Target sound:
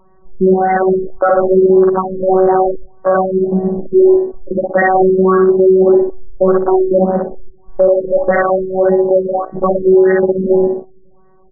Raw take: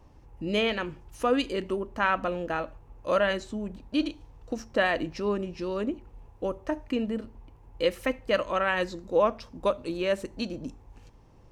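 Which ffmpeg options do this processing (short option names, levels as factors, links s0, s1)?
-filter_complex "[0:a]bandreject=f=60:t=h:w=6,bandreject=f=120:t=h:w=6,bandreject=f=180:t=h:w=6,bandreject=f=240:t=h:w=6,bandreject=f=300:t=h:w=6,afftfilt=real='hypot(re,im)*cos(PI*b)':imag='0':win_size=1024:overlap=0.75,acrossover=split=230[s0][s1];[s1]acompressor=threshold=0.0282:ratio=6[s2];[s0][s2]amix=inputs=2:normalize=0,lowshelf=f=180:g=-2,aecho=1:1:61|122|183|244|305:0.708|0.297|0.125|0.0525|0.022,acompressor=mode=upward:threshold=0.00158:ratio=2.5,asetrate=48091,aresample=44100,atempo=0.917004,adynamicequalizer=threshold=0.00355:dfrequency=580:dqfactor=2.5:tfrequency=580:tqfactor=2.5:attack=5:release=100:ratio=0.375:range=2:mode=boostabove:tftype=bell,afwtdn=0.0126,alimiter=level_in=23.7:limit=0.891:release=50:level=0:latency=1,afftfilt=real='re*lt(b*sr/1024,510*pow(2100/510,0.5+0.5*sin(2*PI*1.7*pts/sr)))':imag='im*lt(b*sr/1024,510*pow(2100/510,0.5+0.5*sin(2*PI*1.7*pts/sr)))':win_size=1024:overlap=0.75,volume=0.841"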